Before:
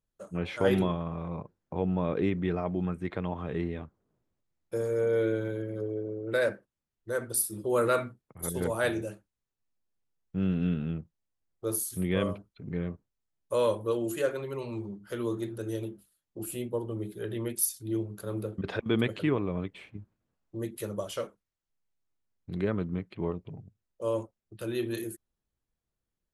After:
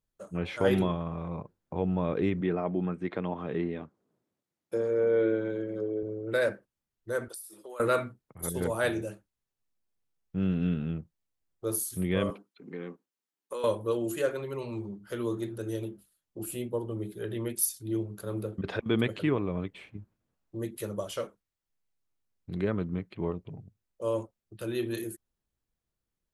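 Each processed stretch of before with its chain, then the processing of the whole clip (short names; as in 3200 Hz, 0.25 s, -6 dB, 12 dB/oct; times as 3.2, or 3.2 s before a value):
2.41–6.03 treble ducked by the level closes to 2900 Hz, closed at -25 dBFS + HPF 210 Hz + low shelf 340 Hz +5.5 dB
7.28–7.8 HPF 670 Hz + compressor 8:1, threshold -40 dBFS
12.3–13.64 HPF 230 Hz 24 dB/oct + notch 620 Hz, Q 5.4 + compressor, threshold -32 dBFS
whole clip: dry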